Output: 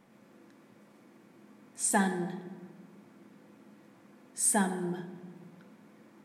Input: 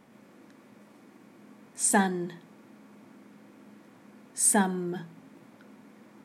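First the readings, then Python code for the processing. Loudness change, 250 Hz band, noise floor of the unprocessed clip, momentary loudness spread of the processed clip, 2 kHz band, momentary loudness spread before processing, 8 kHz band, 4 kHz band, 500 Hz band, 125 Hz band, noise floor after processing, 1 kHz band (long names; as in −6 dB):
−4.0 dB, −3.0 dB, −56 dBFS, 21 LU, −3.5 dB, 17 LU, −4.0 dB, −4.0 dB, −3.5 dB, −2.0 dB, −60 dBFS, −3.5 dB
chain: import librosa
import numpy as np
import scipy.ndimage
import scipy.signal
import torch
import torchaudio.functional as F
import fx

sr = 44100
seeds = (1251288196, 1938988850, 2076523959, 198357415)

y = fx.room_shoebox(x, sr, seeds[0], volume_m3=1500.0, walls='mixed', distance_m=0.79)
y = y * librosa.db_to_amplitude(-4.5)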